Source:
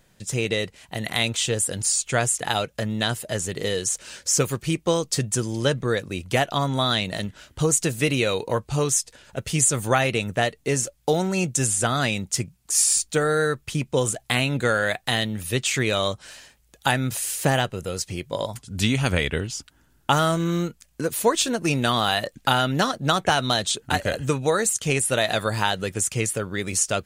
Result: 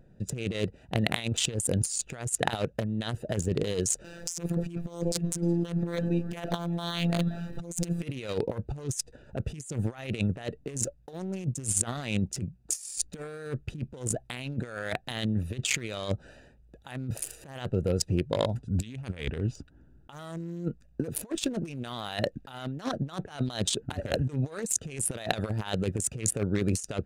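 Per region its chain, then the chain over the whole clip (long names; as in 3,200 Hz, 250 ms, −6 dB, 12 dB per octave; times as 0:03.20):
0:04.04–0:08.03: converter with a step at zero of −33.5 dBFS + phases set to zero 171 Hz + delay that swaps between a low-pass and a high-pass 182 ms, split 960 Hz, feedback 50%, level −12 dB
whole clip: adaptive Wiener filter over 41 samples; compressor whose output falls as the input rises −30 dBFS, ratio −0.5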